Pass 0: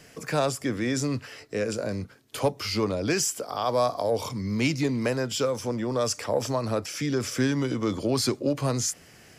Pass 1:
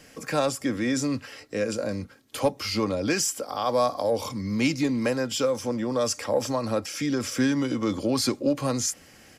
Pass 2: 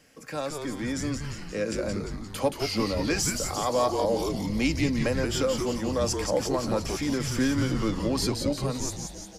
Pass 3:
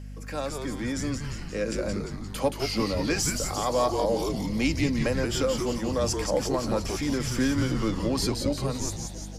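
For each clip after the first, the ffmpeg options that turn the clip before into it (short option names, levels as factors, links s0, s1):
-af "aecho=1:1:3.7:0.39"
-filter_complex "[0:a]dynaudnorm=f=200:g=11:m=2,asplit=9[s0][s1][s2][s3][s4][s5][s6][s7][s8];[s1]adelay=175,afreqshift=-150,volume=0.562[s9];[s2]adelay=350,afreqshift=-300,volume=0.331[s10];[s3]adelay=525,afreqshift=-450,volume=0.195[s11];[s4]adelay=700,afreqshift=-600,volume=0.116[s12];[s5]adelay=875,afreqshift=-750,volume=0.0684[s13];[s6]adelay=1050,afreqshift=-900,volume=0.0403[s14];[s7]adelay=1225,afreqshift=-1050,volume=0.0237[s15];[s8]adelay=1400,afreqshift=-1200,volume=0.014[s16];[s0][s9][s10][s11][s12][s13][s14][s15][s16]amix=inputs=9:normalize=0,volume=0.398"
-af "aeval=exprs='val(0)+0.0126*(sin(2*PI*50*n/s)+sin(2*PI*2*50*n/s)/2+sin(2*PI*3*50*n/s)/3+sin(2*PI*4*50*n/s)/4+sin(2*PI*5*50*n/s)/5)':c=same"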